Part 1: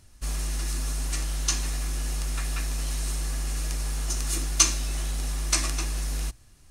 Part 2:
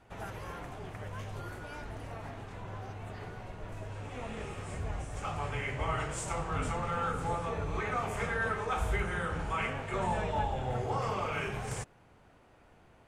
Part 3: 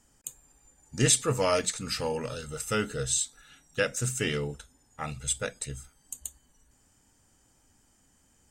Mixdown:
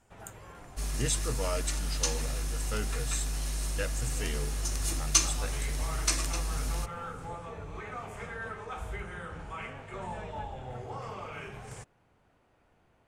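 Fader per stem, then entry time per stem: -4.0 dB, -7.0 dB, -8.5 dB; 0.55 s, 0.00 s, 0.00 s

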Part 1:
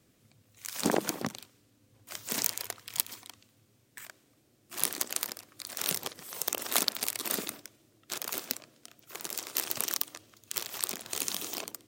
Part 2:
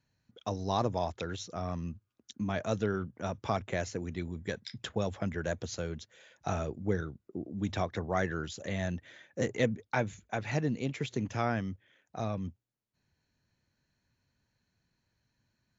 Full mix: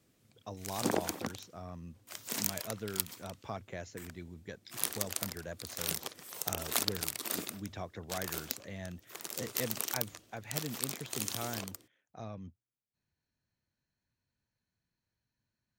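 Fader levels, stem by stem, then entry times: -4.0 dB, -9.5 dB; 0.00 s, 0.00 s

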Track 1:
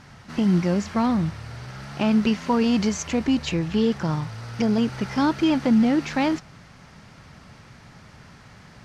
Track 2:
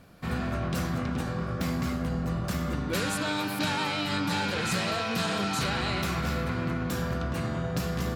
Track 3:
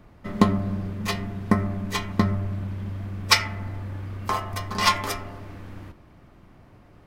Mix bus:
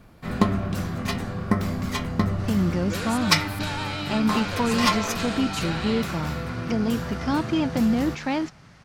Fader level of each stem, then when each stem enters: -3.5 dB, -1.5 dB, -2.0 dB; 2.10 s, 0.00 s, 0.00 s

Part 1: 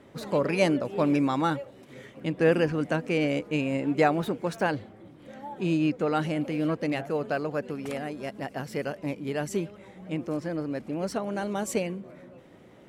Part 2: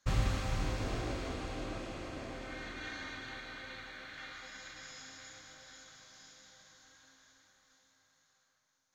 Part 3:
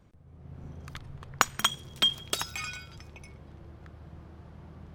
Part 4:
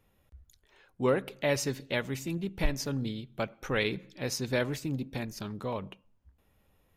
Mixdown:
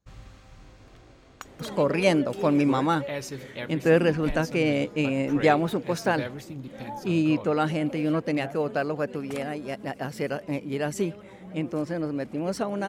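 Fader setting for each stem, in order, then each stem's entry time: +2.0 dB, -15.5 dB, -18.5 dB, -5.0 dB; 1.45 s, 0.00 s, 0.00 s, 1.65 s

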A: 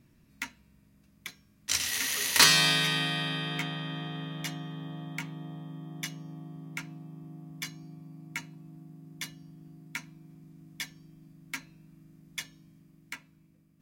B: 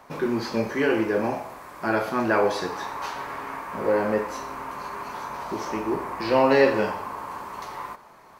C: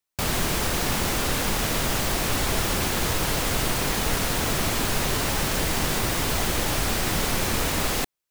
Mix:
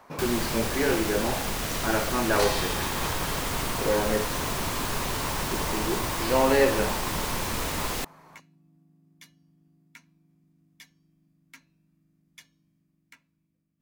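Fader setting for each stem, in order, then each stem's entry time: -13.0 dB, -3.0 dB, -5.5 dB; 0.00 s, 0.00 s, 0.00 s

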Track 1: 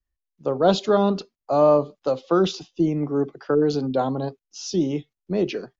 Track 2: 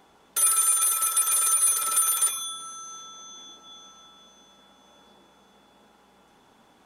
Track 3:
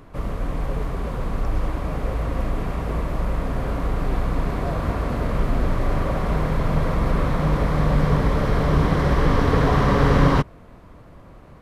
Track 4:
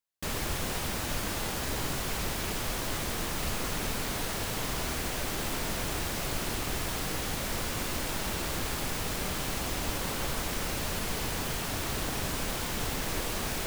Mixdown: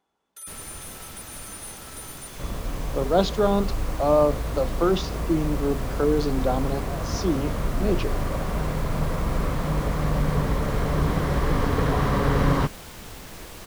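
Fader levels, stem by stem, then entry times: -2.5 dB, -19.0 dB, -4.5 dB, -8.5 dB; 2.50 s, 0.00 s, 2.25 s, 0.25 s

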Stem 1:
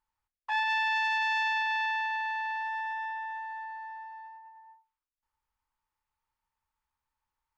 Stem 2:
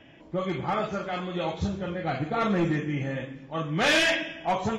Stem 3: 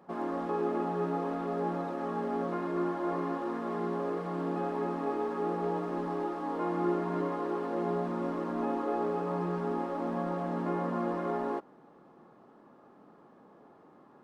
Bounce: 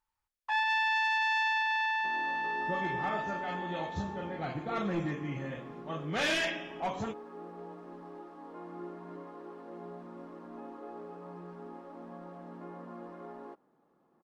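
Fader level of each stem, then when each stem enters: -0.5 dB, -8.0 dB, -13.5 dB; 0.00 s, 2.35 s, 1.95 s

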